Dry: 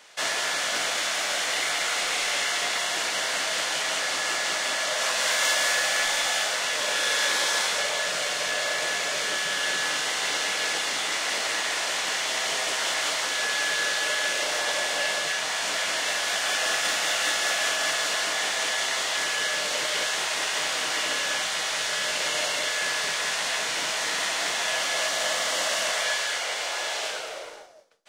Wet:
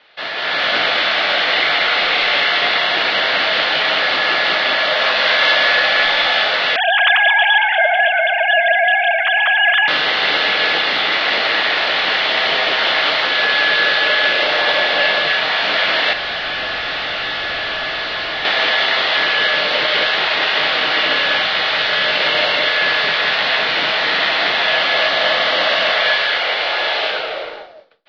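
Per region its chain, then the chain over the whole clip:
6.76–9.88 s: formants replaced by sine waves + multi-head delay 113 ms, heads first and second, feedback 70%, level -17 dB
16.13–18.45 s: steep high-pass 260 Hz 96 dB/octave + overload inside the chain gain 31.5 dB
whole clip: steep low-pass 4.3 kHz 48 dB/octave; band-stop 1 kHz, Q 13; level rider gain up to 10.5 dB; trim +2 dB

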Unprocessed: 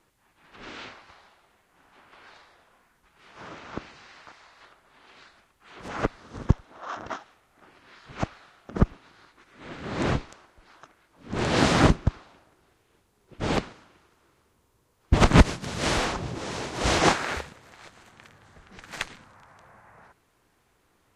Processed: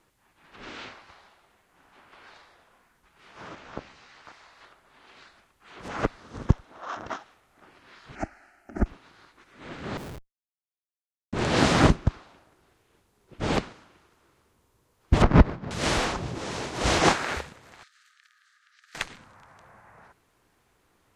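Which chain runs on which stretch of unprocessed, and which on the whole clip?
3.55–4.25 s: AM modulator 240 Hz, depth 80% + doubling 15 ms -6.5 dB
8.15–8.86 s: dynamic bell 3.1 kHz, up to -5 dB, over -52 dBFS, Q 1.6 + static phaser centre 720 Hz, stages 8
9.97–11.33 s: Schmitt trigger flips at -27 dBFS + compression 5:1, threshold -39 dBFS
15.22–15.71 s: median filter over 15 samples + distance through air 180 m
17.83–18.95 s: compression 3:1, threshold -51 dBFS + rippled Chebyshev high-pass 1.2 kHz, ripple 6 dB
whole clip: none

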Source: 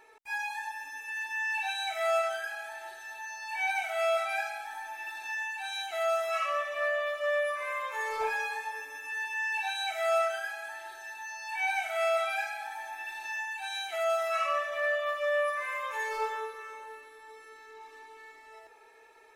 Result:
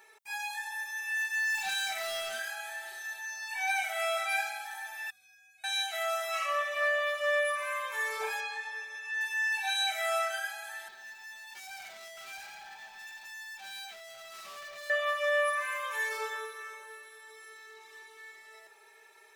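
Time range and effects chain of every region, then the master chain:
0.69–3.13 s: hard clipper -32 dBFS + doubling 30 ms -4.5 dB
5.10–5.64 s: amplifier tone stack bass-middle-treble 10-0-1 + frequency shift -120 Hz + upward compressor, threshold -60 dBFS
8.40–9.21 s: band-pass 180–5100 Hz + peaking EQ 590 Hz -2.5 dB 2.1 oct
10.88–14.90 s: distance through air 82 m + valve stage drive 45 dB, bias 0.3 + decimation joined by straight lines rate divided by 2×
whole clip: tilt EQ +2.5 dB/octave; comb 5.1 ms, depth 51%; trim -2.5 dB

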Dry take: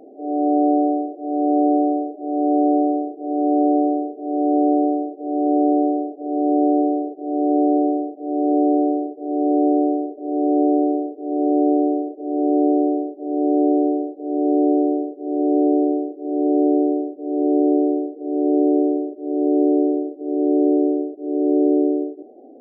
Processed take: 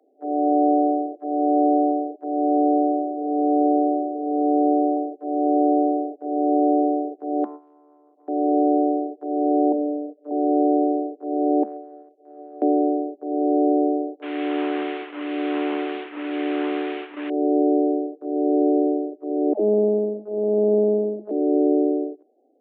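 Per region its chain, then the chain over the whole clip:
1.91–4.97 s: distance through air 180 m + delay 662 ms -9.5 dB
7.44–8.28 s: bass shelf 160 Hz -11 dB + compression, threshold -33 dBFS + loudspeaker Doppler distortion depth 0.35 ms
9.72–10.31 s: high-pass 150 Hz 24 dB/octave + static phaser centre 530 Hz, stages 8 + doubling 47 ms -11 dB
11.63–12.62 s: Bessel high-pass 460 Hz, order 4 + compression 8:1, threshold -29 dBFS
14.22–17.30 s: one-bit delta coder 16 kbps, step -28 dBFS + repeats whose band climbs or falls 113 ms, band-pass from 160 Hz, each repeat 0.7 oct, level -9 dB + dynamic bell 520 Hz, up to -8 dB, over -34 dBFS, Q 1.2
19.53–21.31 s: bass shelf 210 Hz +5 dB + phase dispersion lows, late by 98 ms, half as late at 440 Hz + monotone LPC vocoder at 8 kHz 210 Hz
whole clip: gate -31 dBFS, range -18 dB; Chebyshev high-pass 210 Hz, order 10; bass shelf 320 Hz -11.5 dB; trim +3.5 dB

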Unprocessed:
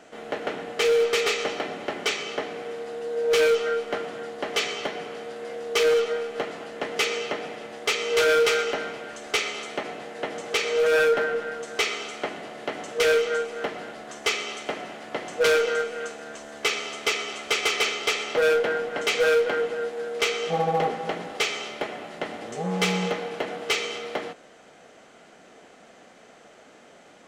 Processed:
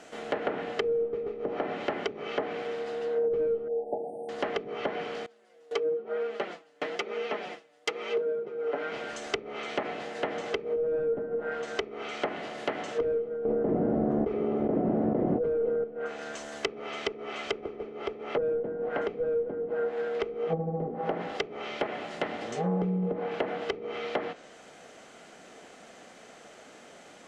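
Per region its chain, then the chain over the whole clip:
3.68–4.29 s: brick-wall FIR band-stop 900–8300 Hz + bass shelf 310 Hz -9 dB
5.26–8.92 s: gate with hold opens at -25 dBFS, closes at -29 dBFS + high-pass 200 Hz + flange 1 Hz, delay 4.2 ms, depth 2.8 ms, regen +3%
13.45–15.84 s: treble shelf 2.2 kHz -9.5 dB + level flattener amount 100%
whole clip: treble shelf 4.4 kHz +4.5 dB; low-pass that closes with the level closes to 320 Hz, closed at -21 dBFS

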